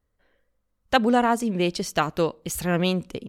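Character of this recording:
background noise floor −75 dBFS
spectral slope −5.0 dB per octave

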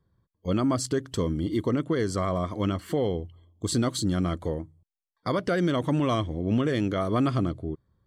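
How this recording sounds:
background noise floor −80 dBFS
spectral slope −6.5 dB per octave

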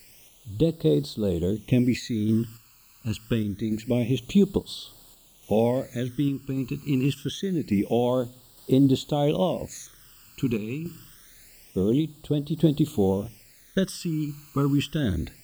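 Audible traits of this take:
a quantiser's noise floor 8 bits, dither triangular
phaser sweep stages 12, 0.26 Hz, lowest notch 600–2,200 Hz
sample-and-hold tremolo

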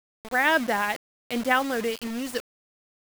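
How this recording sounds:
a quantiser's noise floor 6 bits, dither none

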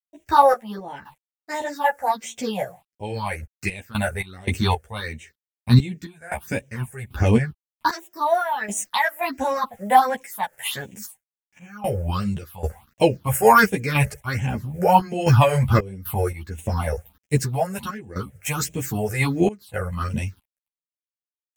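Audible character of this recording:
a quantiser's noise floor 10 bits, dither none
phaser sweep stages 6, 1.4 Hz, lowest notch 260–1,300 Hz
sample-and-hold tremolo 3.8 Hz, depth 95%
a shimmering, thickened sound

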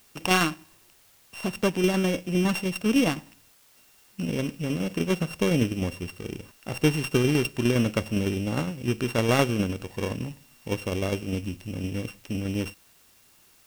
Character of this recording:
a buzz of ramps at a fixed pitch in blocks of 16 samples
tremolo saw down 9.8 Hz, depth 45%
a quantiser's noise floor 10 bits, dither triangular
IMA ADPCM

